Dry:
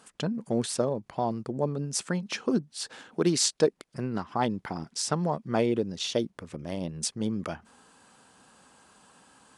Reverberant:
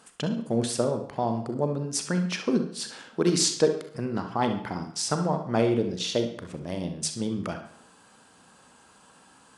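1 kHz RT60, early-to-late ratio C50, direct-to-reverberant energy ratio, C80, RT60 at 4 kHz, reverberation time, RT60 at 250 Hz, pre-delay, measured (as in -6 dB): 0.60 s, 7.5 dB, 5.5 dB, 12.5 dB, 0.55 s, 0.65 s, 0.70 s, 34 ms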